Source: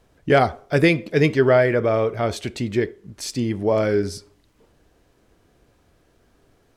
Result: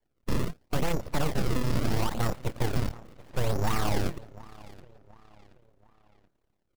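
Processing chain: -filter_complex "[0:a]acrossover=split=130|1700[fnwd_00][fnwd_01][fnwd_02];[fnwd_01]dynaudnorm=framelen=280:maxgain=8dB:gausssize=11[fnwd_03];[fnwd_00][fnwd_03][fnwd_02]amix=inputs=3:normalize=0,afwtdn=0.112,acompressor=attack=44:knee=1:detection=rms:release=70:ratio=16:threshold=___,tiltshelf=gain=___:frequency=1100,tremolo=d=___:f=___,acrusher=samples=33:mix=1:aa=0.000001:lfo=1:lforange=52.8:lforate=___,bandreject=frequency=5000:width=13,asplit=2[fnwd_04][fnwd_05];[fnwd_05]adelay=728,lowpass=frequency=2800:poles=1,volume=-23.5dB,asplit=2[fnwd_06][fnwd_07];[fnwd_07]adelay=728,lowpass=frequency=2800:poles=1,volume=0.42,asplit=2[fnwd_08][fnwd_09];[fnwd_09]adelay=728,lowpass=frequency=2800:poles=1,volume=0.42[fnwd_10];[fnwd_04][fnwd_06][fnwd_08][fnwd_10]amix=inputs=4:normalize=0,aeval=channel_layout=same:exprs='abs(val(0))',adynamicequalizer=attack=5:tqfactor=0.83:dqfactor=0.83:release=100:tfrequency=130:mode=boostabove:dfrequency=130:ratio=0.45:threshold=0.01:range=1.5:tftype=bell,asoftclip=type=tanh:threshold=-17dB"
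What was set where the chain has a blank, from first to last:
-20dB, 3.5, 0.621, 34, 0.76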